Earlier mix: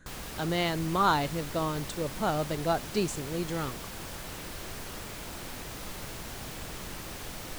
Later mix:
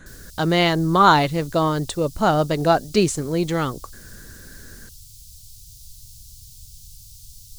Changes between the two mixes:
speech +11.0 dB; background: add inverse Chebyshev band-stop 440–1200 Hz, stop band 80 dB

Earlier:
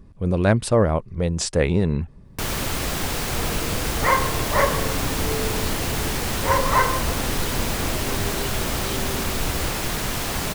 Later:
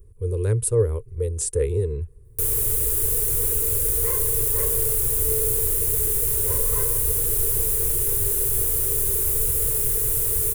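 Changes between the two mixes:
second sound -4.5 dB; master: add EQ curve 120 Hz 0 dB, 170 Hz -22 dB, 260 Hz -21 dB, 450 Hz +5 dB, 650 Hz -29 dB, 950 Hz -17 dB, 5000 Hz -15 dB, 10000 Hz +12 dB

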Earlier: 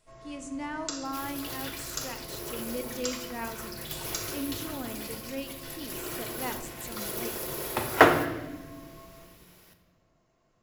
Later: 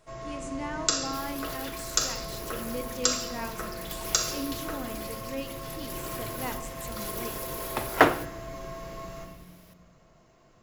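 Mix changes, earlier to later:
first sound +10.5 dB; second sound: send -10.5 dB

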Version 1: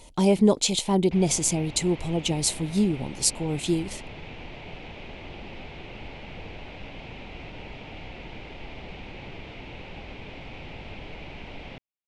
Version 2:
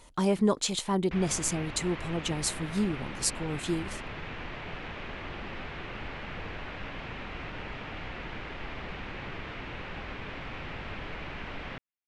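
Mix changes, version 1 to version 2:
speech -6.0 dB; master: add band shelf 1400 Hz +10.5 dB 1 oct

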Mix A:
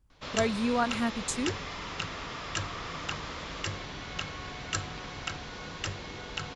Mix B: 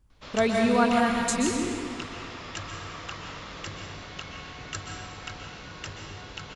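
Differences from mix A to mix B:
background -7.0 dB; reverb: on, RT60 1.9 s

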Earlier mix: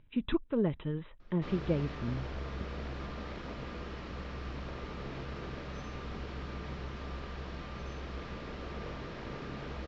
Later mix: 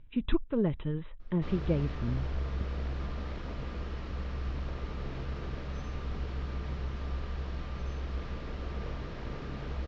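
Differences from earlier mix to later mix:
background: send -6.0 dB; master: add low shelf 82 Hz +11 dB

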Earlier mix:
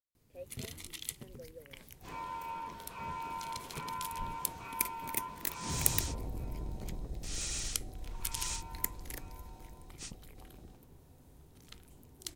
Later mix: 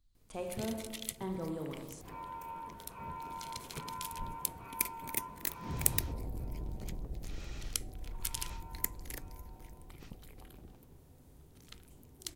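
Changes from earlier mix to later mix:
speech: remove vowel filter e; second sound: add tape spacing loss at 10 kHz 34 dB; reverb: on, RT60 1.5 s

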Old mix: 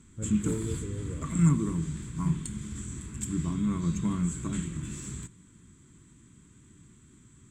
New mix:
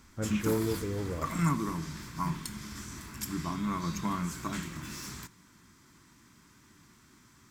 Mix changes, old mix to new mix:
background -8.0 dB; master: remove EQ curve 140 Hz 0 dB, 260 Hz -5 dB, 460 Hz -6 dB, 730 Hz -19 dB, 1300 Hz -15 dB, 2100 Hz -14 dB, 3400 Hz -10 dB, 5300 Hz -23 dB, 7800 Hz +1 dB, 12000 Hz -26 dB

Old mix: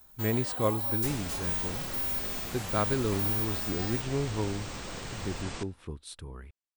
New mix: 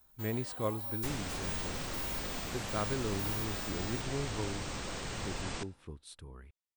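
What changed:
speech -6.5 dB; first sound -8.5 dB

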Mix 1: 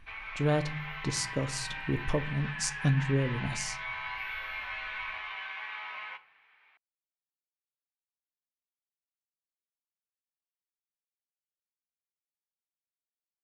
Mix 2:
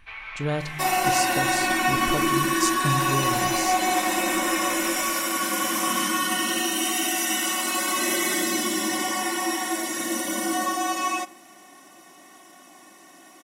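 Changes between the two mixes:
first sound +3.0 dB; second sound: unmuted; master: add high shelf 4900 Hz +8.5 dB

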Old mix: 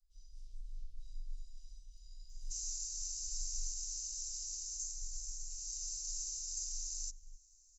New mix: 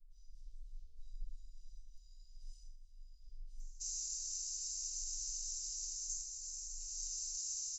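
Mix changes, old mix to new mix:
speech: add tilt -2 dB/oct; first sound -6.0 dB; second sound: entry +1.30 s

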